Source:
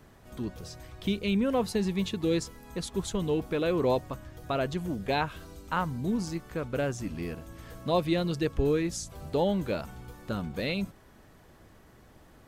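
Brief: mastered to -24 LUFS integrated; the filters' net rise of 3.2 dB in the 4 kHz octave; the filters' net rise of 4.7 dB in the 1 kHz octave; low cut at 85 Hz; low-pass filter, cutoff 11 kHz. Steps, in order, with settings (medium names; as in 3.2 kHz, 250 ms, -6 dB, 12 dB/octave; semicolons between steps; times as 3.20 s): high-pass 85 Hz; low-pass 11 kHz; peaking EQ 1 kHz +6 dB; peaking EQ 4 kHz +3.5 dB; trim +5.5 dB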